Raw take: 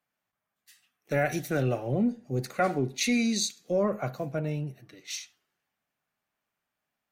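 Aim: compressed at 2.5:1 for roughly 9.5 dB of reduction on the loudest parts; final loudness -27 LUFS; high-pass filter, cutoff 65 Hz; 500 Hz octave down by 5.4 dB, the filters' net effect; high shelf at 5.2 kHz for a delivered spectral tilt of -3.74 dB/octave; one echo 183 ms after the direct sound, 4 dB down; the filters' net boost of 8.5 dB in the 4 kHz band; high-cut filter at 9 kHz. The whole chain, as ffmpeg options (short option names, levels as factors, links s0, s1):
-af "highpass=65,lowpass=9000,equalizer=f=500:t=o:g=-7,equalizer=f=4000:t=o:g=7.5,highshelf=f=5200:g=5,acompressor=threshold=0.0224:ratio=2.5,aecho=1:1:183:0.631,volume=2.11"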